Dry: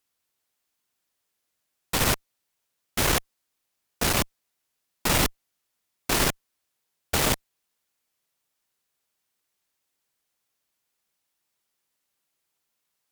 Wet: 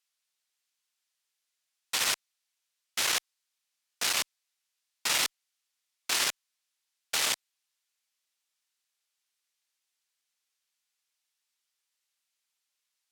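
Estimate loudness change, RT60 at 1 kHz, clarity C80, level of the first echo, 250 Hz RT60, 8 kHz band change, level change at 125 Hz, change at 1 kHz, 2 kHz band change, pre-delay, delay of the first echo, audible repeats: −3.5 dB, no reverb audible, no reverb audible, no echo audible, no reverb audible, −2.0 dB, −26.5 dB, −8.0 dB, −3.0 dB, no reverb audible, no echo audible, no echo audible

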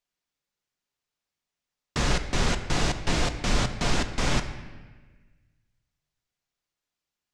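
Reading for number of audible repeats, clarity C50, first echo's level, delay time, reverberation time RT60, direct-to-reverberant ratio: no echo audible, 10.0 dB, no echo audible, no echo audible, 1.3 s, 7.0 dB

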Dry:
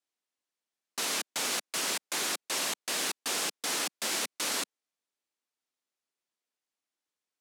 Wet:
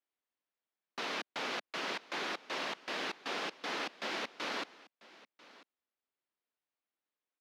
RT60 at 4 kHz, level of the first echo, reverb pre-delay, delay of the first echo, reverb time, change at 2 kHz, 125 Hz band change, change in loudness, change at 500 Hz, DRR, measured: no reverb audible, −20.5 dB, no reverb audible, 993 ms, no reverb audible, −3.0 dB, −3.5 dB, −7.5 dB, −1.5 dB, no reverb audible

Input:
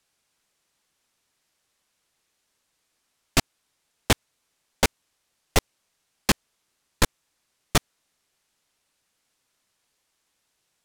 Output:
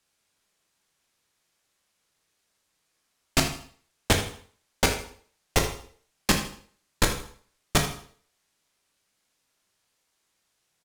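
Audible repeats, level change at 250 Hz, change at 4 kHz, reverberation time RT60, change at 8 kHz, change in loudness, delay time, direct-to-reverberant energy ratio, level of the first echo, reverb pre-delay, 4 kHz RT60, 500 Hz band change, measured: 1, 0.0 dB, −0.5 dB, 0.50 s, 0.0 dB, −1.0 dB, 79 ms, 3.0 dB, −12.5 dB, 7 ms, 0.50 s, 0.0 dB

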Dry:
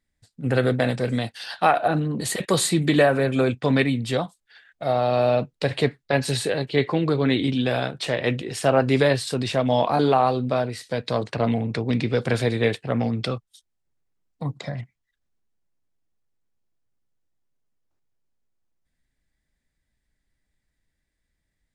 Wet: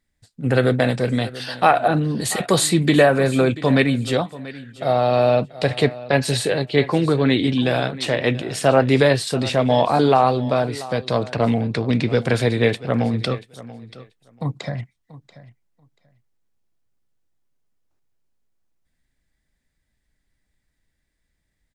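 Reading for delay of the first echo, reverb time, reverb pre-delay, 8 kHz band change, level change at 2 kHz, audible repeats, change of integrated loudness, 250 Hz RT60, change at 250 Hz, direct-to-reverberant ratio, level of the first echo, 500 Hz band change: 685 ms, no reverb audible, no reverb audible, +3.5 dB, +3.5 dB, 2, +3.5 dB, no reverb audible, +3.5 dB, no reverb audible, −17.5 dB, +3.5 dB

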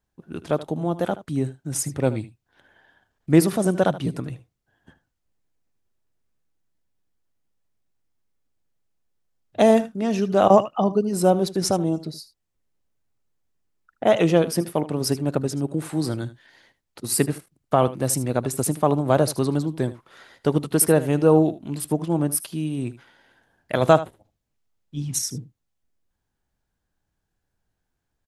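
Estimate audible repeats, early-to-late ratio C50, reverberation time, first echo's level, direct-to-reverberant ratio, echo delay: 1, no reverb audible, no reverb audible, −16.0 dB, no reverb audible, 77 ms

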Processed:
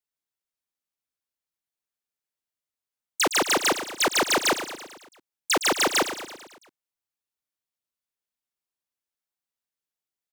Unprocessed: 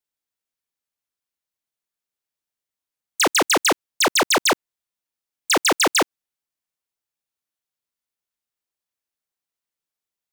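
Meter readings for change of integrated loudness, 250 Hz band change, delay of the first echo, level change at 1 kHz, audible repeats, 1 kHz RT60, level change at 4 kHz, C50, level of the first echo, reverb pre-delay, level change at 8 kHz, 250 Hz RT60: −4.0 dB, −4.0 dB, 111 ms, −4.0 dB, 5, no reverb audible, −4.0 dB, no reverb audible, −11.0 dB, no reverb audible, −4.0 dB, no reverb audible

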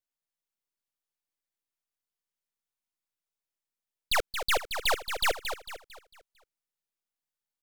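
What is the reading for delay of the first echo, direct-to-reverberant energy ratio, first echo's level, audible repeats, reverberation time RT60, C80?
225 ms, no reverb audible, −8.0 dB, 4, no reverb audible, no reverb audible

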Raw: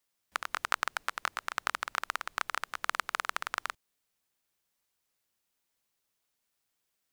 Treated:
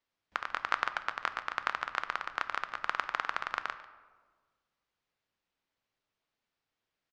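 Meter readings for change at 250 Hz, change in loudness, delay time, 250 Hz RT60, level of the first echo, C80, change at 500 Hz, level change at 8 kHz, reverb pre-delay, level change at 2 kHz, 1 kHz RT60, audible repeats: +1.0 dB, −0.5 dB, 144 ms, 1.7 s, −17.5 dB, 13.0 dB, +1.0 dB, −13.0 dB, 4 ms, 0.0 dB, 1.4 s, 1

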